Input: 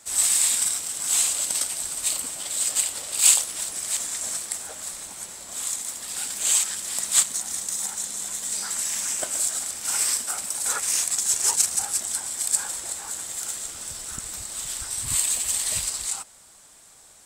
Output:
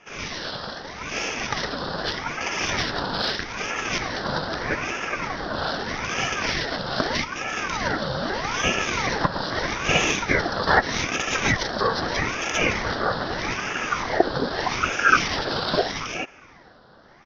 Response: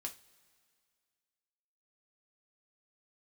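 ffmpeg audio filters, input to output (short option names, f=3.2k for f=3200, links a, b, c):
-af "aresample=11025,aresample=44100,dynaudnorm=f=240:g=13:m=11dB,alimiter=limit=-13.5dB:level=0:latency=1:release=432,asetrate=42845,aresample=44100,atempo=1.0293,highshelf=f=1.6k:t=q:w=3:g=-11.5,aexciter=amount=1.7:drive=8.2:freq=3.3k,equalizer=f=160:w=1.1:g=13.5,aeval=exprs='val(0)*sin(2*PI*930*n/s+930*0.65/0.8*sin(2*PI*0.8*n/s))':c=same,volume=7dB"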